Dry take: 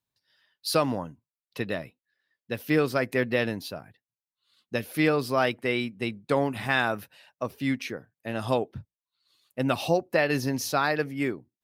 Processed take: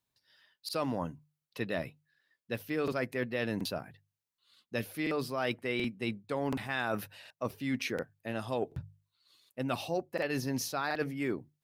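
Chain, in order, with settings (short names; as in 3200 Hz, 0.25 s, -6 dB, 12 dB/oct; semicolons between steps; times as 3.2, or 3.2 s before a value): reverse; compressor, threshold -32 dBFS, peak gain reduction 14 dB; reverse; notches 50/100/150 Hz; crackling interface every 0.73 s, samples 2048, repeat, from 0.64; gain +2 dB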